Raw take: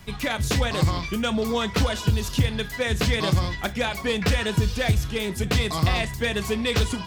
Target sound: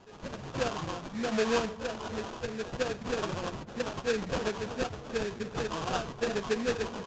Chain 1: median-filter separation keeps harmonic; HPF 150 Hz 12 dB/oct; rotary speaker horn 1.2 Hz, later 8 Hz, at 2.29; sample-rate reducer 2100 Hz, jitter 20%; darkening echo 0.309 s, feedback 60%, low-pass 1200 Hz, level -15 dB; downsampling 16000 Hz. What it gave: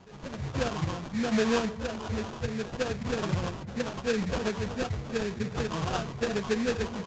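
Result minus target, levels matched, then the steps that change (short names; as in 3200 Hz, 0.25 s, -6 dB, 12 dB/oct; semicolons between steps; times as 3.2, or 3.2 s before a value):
125 Hz band +5.0 dB
change: HPF 310 Hz 12 dB/oct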